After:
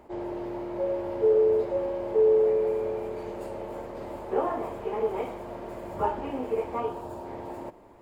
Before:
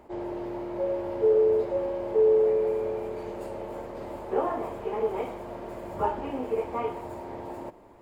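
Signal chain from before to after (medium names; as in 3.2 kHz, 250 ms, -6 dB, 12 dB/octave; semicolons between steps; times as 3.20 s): 6.80–7.26 s: peaking EQ 2.1 kHz -13 dB 0.3 oct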